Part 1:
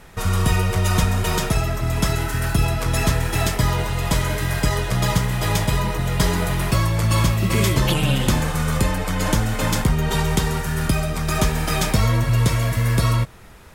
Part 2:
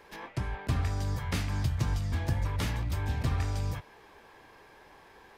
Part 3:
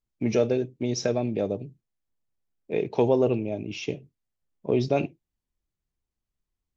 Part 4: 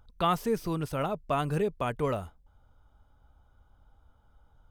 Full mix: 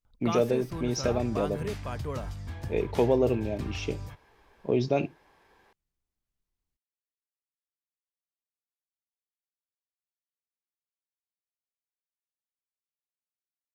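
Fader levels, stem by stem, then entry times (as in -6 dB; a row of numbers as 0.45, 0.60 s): off, -7.5 dB, -2.0 dB, -7.0 dB; off, 0.35 s, 0.00 s, 0.05 s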